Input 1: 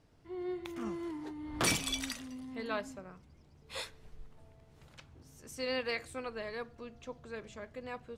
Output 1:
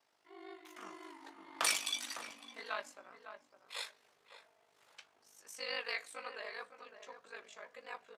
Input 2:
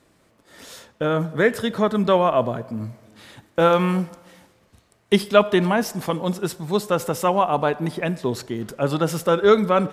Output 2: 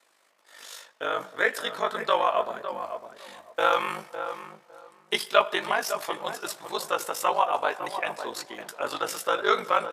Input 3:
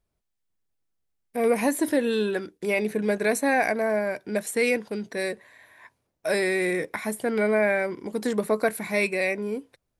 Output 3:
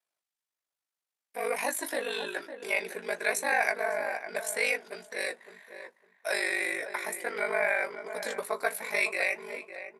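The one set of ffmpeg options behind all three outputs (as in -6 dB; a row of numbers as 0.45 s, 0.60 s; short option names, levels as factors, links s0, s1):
-filter_complex "[0:a]highpass=800,aeval=exprs='val(0)*sin(2*PI*25*n/s)':c=same,flanger=delay=6.8:depth=4.7:regen=-51:speed=1.9:shape=triangular,asplit=2[s0][s1];[s1]adelay=556,lowpass=f=1300:p=1,volume=0.376,asplit=2[s2][s3];[s3]adelay=556,lowpass=f=1300:p=1,volume=0.2,asplit=2[s4][s5];[s5]adelay=556,lowpass=f=1300:p=1,volume=0.2[s6];[s2][s4][s6]amix=inputs=3:normalize=0[s7];[s0][s7]amix=inputs=2:normalize=0,aresample=32000,aresample=44100,volume=2"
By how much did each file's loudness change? -2.0 LU, -6.5 LU, -5.0 LU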